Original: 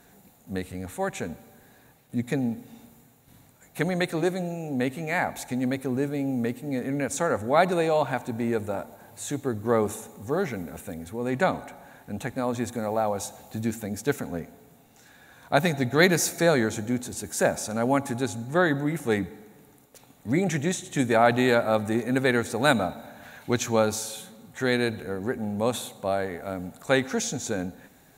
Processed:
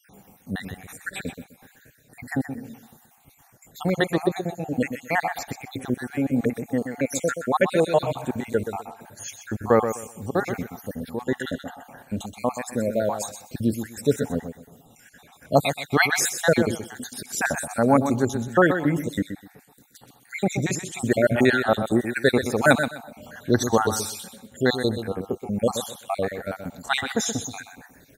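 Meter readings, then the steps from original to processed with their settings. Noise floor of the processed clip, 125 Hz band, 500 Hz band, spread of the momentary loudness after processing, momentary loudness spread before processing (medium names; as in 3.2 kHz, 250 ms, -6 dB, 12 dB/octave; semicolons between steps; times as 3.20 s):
-57 dBFS, +1.5 dB, +1.5 dB, 15 LU, 14 LU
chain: random holes in the spectrogram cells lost 60%; feedback delay 126 ms, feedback 21%, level -9 dB; trim +5.5 dB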